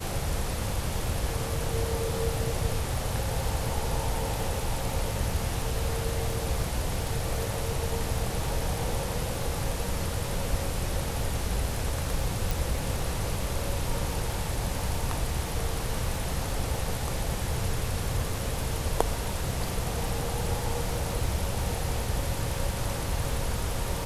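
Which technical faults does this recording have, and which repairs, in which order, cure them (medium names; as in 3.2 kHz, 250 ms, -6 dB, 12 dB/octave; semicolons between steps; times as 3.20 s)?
crackle 46 per s -36 dBFS
12.51 s: pop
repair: de-click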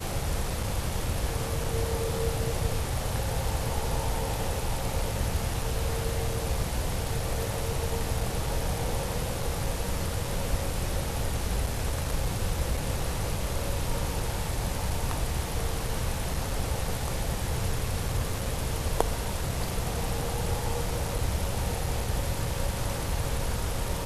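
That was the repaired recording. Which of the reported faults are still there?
nothing left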